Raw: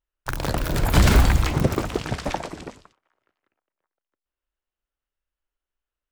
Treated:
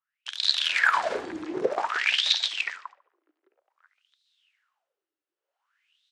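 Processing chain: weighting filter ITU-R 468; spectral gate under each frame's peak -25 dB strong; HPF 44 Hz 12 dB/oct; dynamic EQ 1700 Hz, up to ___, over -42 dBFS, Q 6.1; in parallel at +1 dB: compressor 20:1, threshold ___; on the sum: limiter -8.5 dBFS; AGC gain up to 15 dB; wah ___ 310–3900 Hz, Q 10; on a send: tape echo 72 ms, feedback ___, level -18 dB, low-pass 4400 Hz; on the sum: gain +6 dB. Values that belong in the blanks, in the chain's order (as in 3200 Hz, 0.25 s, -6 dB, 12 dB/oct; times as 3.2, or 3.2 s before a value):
+5 dB, -31 dBFS, 0.53 Hz, 41%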